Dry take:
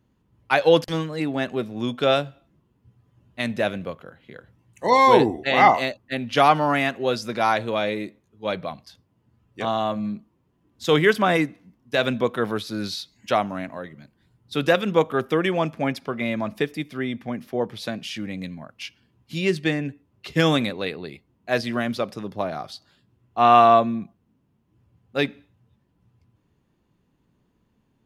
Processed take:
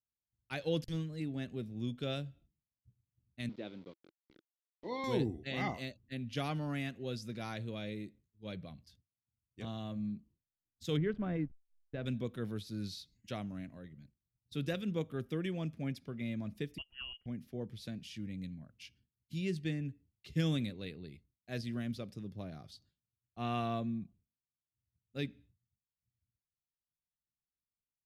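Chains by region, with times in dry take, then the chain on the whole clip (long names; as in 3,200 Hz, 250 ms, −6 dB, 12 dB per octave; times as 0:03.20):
0:03.49–0:05.04: centre clipping without the shift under −33.5 dBFS + loudspeaker in its box 290–3,900 Hz, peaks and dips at 330 Hz +6 dB, 620 Hz −4 dB, 910 Hz +3 dB, 1,700 Hz −9 dB, 2,700 Hz −7 dB
0:10.97–0:12.06: slack as between gear wheels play −30 dBFS + low-pass filter 1,500 Hz
0:16.78–0:17.26: voice inversion scrambler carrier 3,100 Hz + expander for the loud parts, over −46 dBFS
whole clip: downward expander −47 dBFS; guitar amp tone stack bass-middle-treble 10-0-1; level +6 dB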